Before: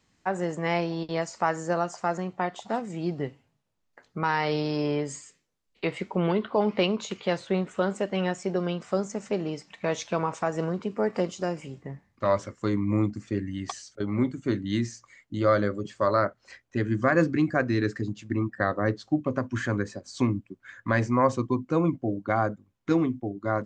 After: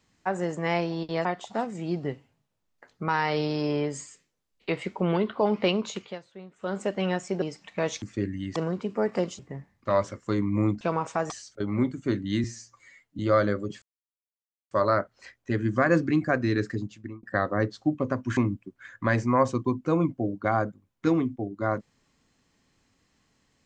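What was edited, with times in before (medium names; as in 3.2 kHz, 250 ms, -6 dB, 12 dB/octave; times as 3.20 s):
1.25–2.40 s: delete
7.08–7.97 s: dip -18 dB, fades 0.26 s
8.57–9.48 s: delete
10.08–10.57 s: swap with 13.16–13.70 s
11.40–11.74 s: delete
14.84–15.34 s: stretch 1.5×
15.97 s: insert silence 0.89 s
18.02–18.49 s: fade out
19.63–20.21 s: delete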